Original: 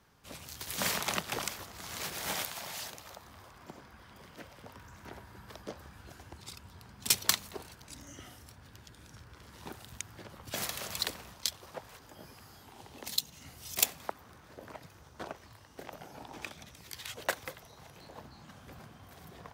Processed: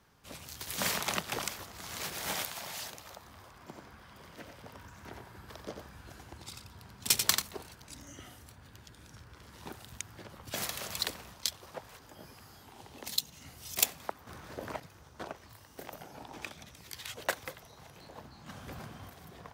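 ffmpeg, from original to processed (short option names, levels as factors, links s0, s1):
-filter_complex "[0:a]asettb=1/sr,asplit=3[s0][s1][s2];[s0]atrim=end=3.594[s3];[s1]atrim=start=3.59:end=7.42,asetpts=PTS-STARTPTS,afade=t=in:d=0.004:c=qsin,afade=t=out:st=3.826:d=0.004:c=qsin,aecho=1:1:90:0.501,atrim=end_sample=168903[s4];[s2]atrim=start=7.416[s5];[s3][s4]acrossfade=d=0.004:c1=hsin:c2=qsin[s6];[s6][s5]acrossfade=d=0.004:c1=qsin:c2=hsin,asettb=1/sr,asplit=3[s7][s8][s9];[s7]atrim=end=8.124[s10];[s8]atrim=start=8.12:end=8.81,asetpts=PTS-STARTPTS,afade=t=in:d=0.004:c=qsin,afade=t=out:st=0.686:d=0.004:c=qsin,bandreject=f=5400:w=12[s11];[s9]atrim=start=8.806[s12];[s10][s11]acrossfade=d=0.004:c1=hsin:c2=qsin[s13];[s13][s12]acrossfade=d=0.004:c1=qsin:c2=hsin,asettb=1/sr,asplit=3[s14][s15][s16];[s14]atrim=end=15.494[s17];[s15]atrim=start=15.49:end=16.03,asetpts=PTS-STARTPTS,afade=t=in:d=0.004:c=qsin,afade=t=out:st=0.536:d=0.004:c=qsin,highshelf=f=9700:g=11.5[s18];[s16]atrim=start=16.026[s19];[s17][s18]acrossfade=d=0.004:c1=hsin:c2=qsin[s20];[s20][s19]acrossfade=d=0.004:c1=qsin:c2=hsin,asettb=1/sr,asplit=3[s21][s22][s23];[s21]atrim=end=18.464[s24];[s22]atrim=start=18.46:end=19.1,asetpts=PTS-STARTPTS,afade=t=in:d=0.004:c=qsin,afade=t=out:st=0.636:d=0.004:c=qsin,acontrast=47[s25];[s23]atrim=start=19.096[s26];[s24][s25]acrossfade=d=0.004:c1=hsin:c2=qsin[s27];[s27][s26]acrossfade=d=0.004:c1=qsin:c2=hsin,asplit=3[s28][s29][s30];[s28]atrim=end=14.272[s31];[s29]atrim=start=14.268:end=14.802,asetpts=PTS-STARTPTS,volume=2.37[s32];[s30]atrim=start=14.798[s33];[s31][s32]acrossfade=d=0.004:c1=hsin:c2=hsin[s34];[s34][s33]acrossfade=d=0.004:c1=hsin:c2=hsin"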